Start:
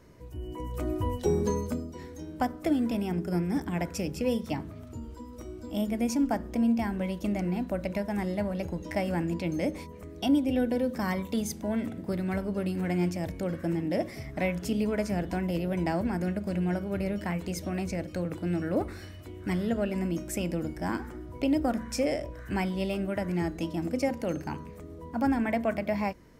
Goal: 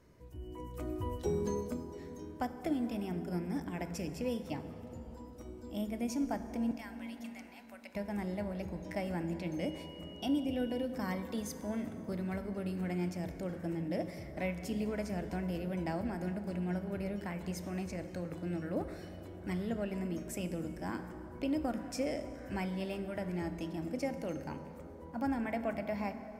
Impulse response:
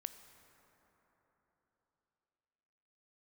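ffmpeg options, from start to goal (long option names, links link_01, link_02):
-filter_complex "[0:a]asettb=1/sr,asplit=3[link_01][link_02][link_03];[link_01]atrim=end=6.714[link_04];[link_02]atrim=start=6.71:end=7.95,asetpts=PTS-STARTPTS,afade=type=in:duration=0.004:curve=qsin,afade=type=out:start_time=1.236:duration=0.004:curve=qsin,highpass=1400[link_05];[link_03]atrim=start=7.946[link_06];[link_04][link_05]acrossfade=duration=0.004:curve1=hsin:curve2=qsin[link_07];[link_07][link_06]acrossfade=duration=0.004:curve1=qsin:curve2=hsin,asettb=1/sr,asplit=3[link_08][link_09][link_10];[link_08]atrim=end=9.594[link_11];[link_09]atrim=start=9.59:end=10.85,asetpts=PTS-STARTPTS,afade=type=in:duration=0.004:curve=qsin,afade=type=out:start_time=1.256:duration=0.004:curve=qsin,aeval=exprs='val(0)+0.00501*sin(2*PI*2900*n/s)':channel_layout=same[link_12];[link_10]atrim=start=10.846[link_13];[link_11][link_12]acrossfade=duration=0.004:curve1=hsin:curve2=qsin[link_14];[link_14][link_13]acrossfade=duration=0.004:curve1=qsin:curve2=hsin[link_15];[1:a]atrim=start_sample=2205,asetrate=39690,aresample=44100[link_16];[link_15][link_16]afir=irnorm=-1:irlink=0,volume=-4.5dB"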